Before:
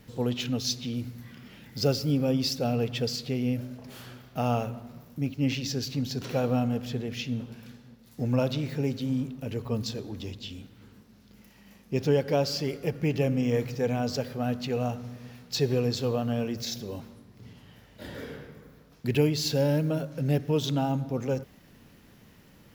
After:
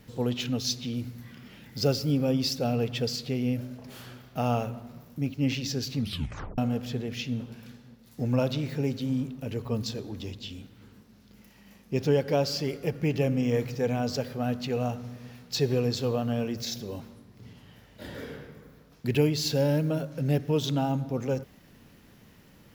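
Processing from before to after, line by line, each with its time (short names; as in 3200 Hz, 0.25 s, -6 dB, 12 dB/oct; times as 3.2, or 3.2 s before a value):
5.97 tape stop 0.61 s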